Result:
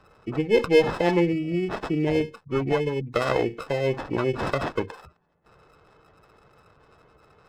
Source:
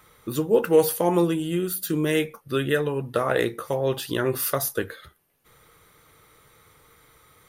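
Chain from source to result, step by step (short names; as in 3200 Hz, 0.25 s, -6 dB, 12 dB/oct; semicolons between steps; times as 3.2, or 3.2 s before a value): sample-and-hold 17×; spectral gate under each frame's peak -20 dB strong; running maximum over 5 samples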